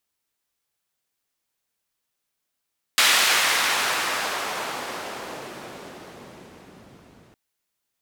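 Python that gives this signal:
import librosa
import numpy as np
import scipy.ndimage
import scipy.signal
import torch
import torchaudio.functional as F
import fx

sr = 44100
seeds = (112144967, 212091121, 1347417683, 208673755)

y = fx.riser_noise(sr, seeds[0], length_s=4.36, colour='white', kind='bandpass', start_hz=2300.0, end_hz=130.0, q=0.75, swell_db=-24.5, law='exponential')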